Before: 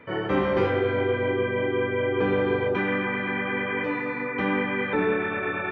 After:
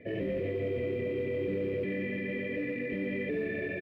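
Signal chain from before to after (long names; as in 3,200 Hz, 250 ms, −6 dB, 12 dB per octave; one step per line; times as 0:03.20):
loose part that buzzes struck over −38 dBFS, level −31 dBFS
brick-wall band-stop 730–1,700 Hz
brickwall limiter −23.5 dBFS, peak gain reduction 11 dB
tempo change 1.5×
noise that follows the level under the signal 18 dB
high-frequency loss of the air 450 metres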